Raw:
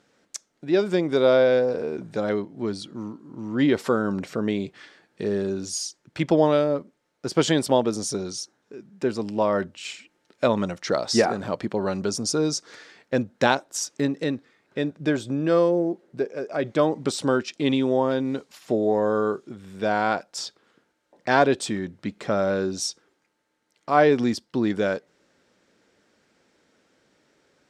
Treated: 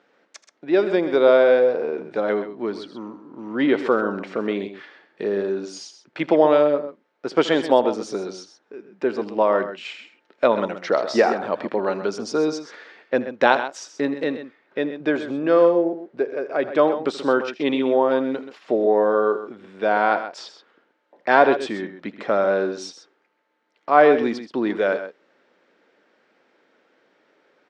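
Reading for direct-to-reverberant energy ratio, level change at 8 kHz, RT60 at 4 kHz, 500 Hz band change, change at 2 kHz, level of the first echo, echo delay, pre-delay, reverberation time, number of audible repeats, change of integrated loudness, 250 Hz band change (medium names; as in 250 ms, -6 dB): no reverb, under -10 dB, no reverb, +4.0 dB, +4.5 dB, -16.5 dB, 80 ms, no reverb, no reverb, 2, +3.0 dB, 0.0 dB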